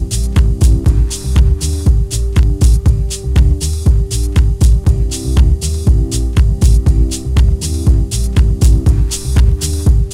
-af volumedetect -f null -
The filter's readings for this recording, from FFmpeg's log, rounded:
mean_volume: -10.5 dB
max_volume: -1.2 dB